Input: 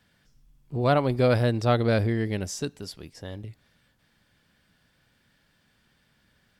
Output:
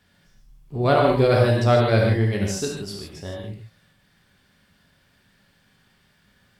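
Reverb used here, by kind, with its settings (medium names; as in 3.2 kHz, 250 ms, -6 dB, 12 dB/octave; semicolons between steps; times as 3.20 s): gated-style reverb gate 180 ms flat, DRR -1.5 dB; trim +1.5 dB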